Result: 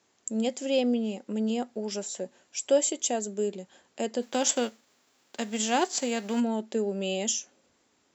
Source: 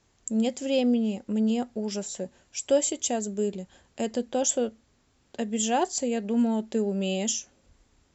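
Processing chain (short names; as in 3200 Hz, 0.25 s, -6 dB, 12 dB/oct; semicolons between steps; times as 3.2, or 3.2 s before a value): 4.21–6.39 spectral whitening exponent 0.6; HPF 250 Hz 12 dB/oct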